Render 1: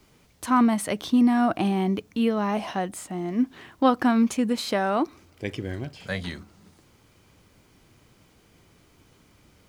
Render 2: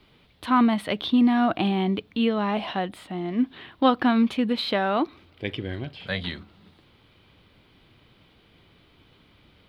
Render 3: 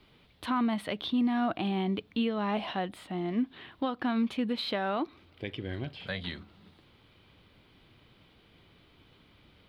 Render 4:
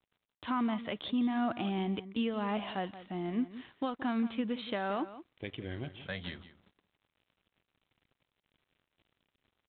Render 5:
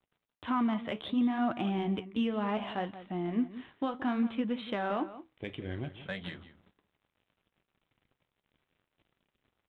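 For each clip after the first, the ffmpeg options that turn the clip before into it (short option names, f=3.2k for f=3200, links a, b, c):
-af "highshelf=f=4.9k:t=q:w=3:g=-11"
-af "alimiter=limit=-18.5dB:level=0:latency=1:release=387,volume=-3dB"
-filter_complex "[0:a]aresample=8000,aeval=exprs='sgn(val(0))*max(abs(val(0))-0.00168,0)':c=same,aresample=44100,asplit=2[a][b];[b]adelay=174.9,volume=-14dB,highshelf=f=4k:g=-3.94[c];[a][c]amix=inputs=2:normalize=0,volume=-3dB"
-filter_complex "[0:a]asplit=2[a][b];[b]adynamicsmooth=sensitivity=4.5:basefreq=3.8k,volume=0dB[c];[a][c]amix=inputs=2:normalize=0,flanger=delay=5.1:depth=9.3:regen=-62:speed=0.65:shape=sinusoidal"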